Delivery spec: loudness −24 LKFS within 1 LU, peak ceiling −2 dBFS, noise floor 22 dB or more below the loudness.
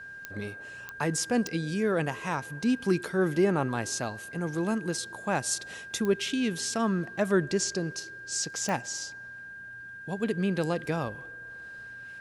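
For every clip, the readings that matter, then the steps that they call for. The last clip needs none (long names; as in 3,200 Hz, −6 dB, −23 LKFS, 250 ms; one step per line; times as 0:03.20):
number of clicks 5; interfering tone 1,600 Hz; level of the tone −41 dBFS; integrated loudness −29.5 LKFS; sample peak −13.0 dBFS; target loudness −24.0 LKFS
→ click removal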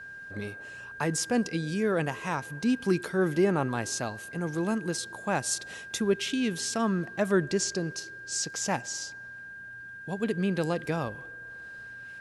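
number of clicks 0; interfering tone 1,600 Hz; level of the tone −41 dBFS
→ notch filter 1,600 Hz, Q 30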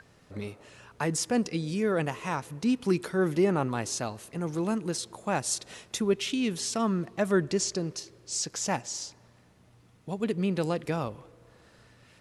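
interfering tone none found; integrated loudness −30.0 LKFS; sample peak −13.0 dBFS; target loudness −24.0 LKFS
→ level +6 dB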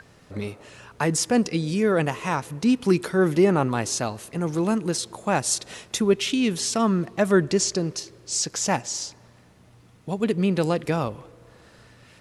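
integrated loudness −24.0 LKFS; sample peak −7.0 dBFS; background noise floor −54 dBFS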